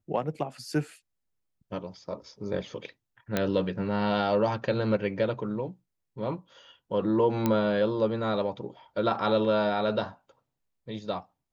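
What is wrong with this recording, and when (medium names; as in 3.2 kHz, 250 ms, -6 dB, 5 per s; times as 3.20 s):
3.37 s: pop -11 dBFS
7.46 s: pop -12 dBFS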